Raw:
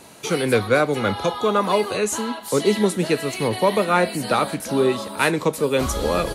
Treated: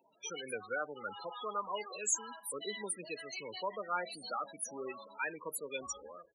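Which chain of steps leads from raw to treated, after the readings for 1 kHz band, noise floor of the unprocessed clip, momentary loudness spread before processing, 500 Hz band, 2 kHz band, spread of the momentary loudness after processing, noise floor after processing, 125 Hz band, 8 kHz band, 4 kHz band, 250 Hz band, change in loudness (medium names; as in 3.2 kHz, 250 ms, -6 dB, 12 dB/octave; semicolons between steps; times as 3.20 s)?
-17.5 dB, -36 dBFS, 5 LU, -22.5 dB, -16.0 dB, 8 LU, -63 dBFS, -33.0 dB, -8.0 dB, -17.0 dB, -28.0 dB, -18.5 dB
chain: fade out at the end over 0.52 s; loudest bins only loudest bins 16; differentiator; trim +1 dB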